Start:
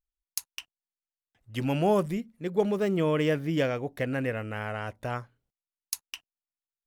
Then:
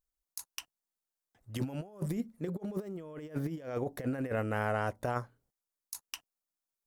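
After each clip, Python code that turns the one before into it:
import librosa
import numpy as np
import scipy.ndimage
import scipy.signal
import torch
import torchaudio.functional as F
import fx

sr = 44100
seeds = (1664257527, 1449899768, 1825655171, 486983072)

y = fx.low_shelf(x, sr, hz=210.0, db=-5.5)
y = fx.over_compress(y, sr, threshold_db=-34.0, ratio=-0.5)
y = fx.peak_eq(y, sr, hz=2700.0, db=-10.0, octaves=1.4)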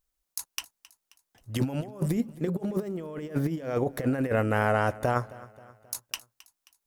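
y = fx.echo_feedback(x, sr, ms=266, feedback_pct=50, wet_db=-20.0)
y = y * 10.0 ** (7.5 / 20.0)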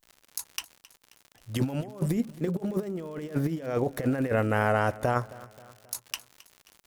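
y = fx.dmg_crackle(x, sr, seeds[0], per_s=120.0, level_db=-39.0)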